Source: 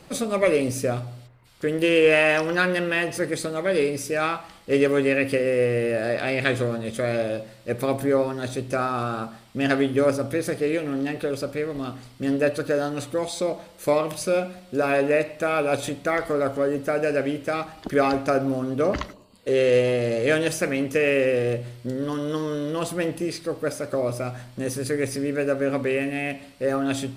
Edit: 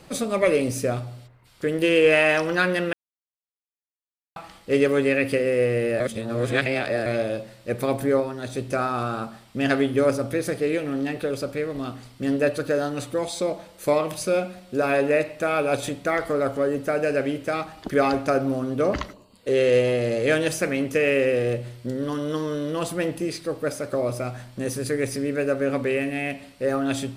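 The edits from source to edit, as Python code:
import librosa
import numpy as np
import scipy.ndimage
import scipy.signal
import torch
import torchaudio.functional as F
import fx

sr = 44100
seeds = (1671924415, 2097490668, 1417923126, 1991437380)

y = fx.edit(x, sr, fx.silence(start_s=2.93, length_s=1.43),
    fx.reverse_span(start_s=6.0, length_s=1.06),
    fx.clip_gain(start_s=8.2, length_s=0.35, db=-3.0), tone=tone)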